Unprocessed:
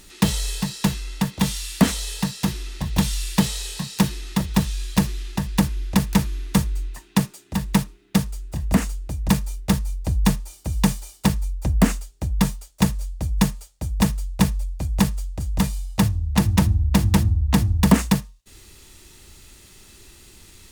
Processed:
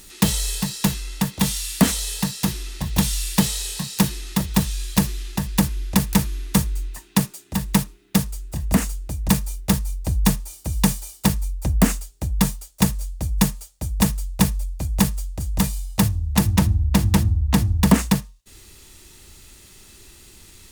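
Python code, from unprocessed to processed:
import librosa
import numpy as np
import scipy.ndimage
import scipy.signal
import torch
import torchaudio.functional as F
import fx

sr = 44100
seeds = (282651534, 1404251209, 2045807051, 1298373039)

y = fx.high_shelf(x, sr, hz=7300.0, db=fx.steps((0.0, 8.5), (16.5, 3.0)))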